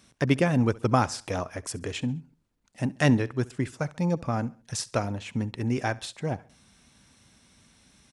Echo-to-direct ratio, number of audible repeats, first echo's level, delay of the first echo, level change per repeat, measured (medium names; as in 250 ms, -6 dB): -21.0 dB, 2, -22.0 dB, 68 ms, -7.5 dB